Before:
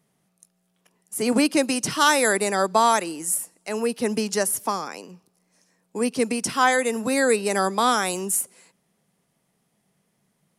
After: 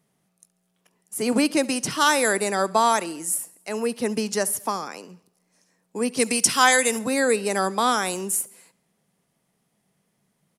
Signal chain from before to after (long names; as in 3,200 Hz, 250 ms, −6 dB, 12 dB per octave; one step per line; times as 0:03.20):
0:06.17–0:06.99: high-shelf EQ 2,200 Hz +11 dB
on a send: repeating echo 69 ms, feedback 57%, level −23 dB
on the sum: level −1 dB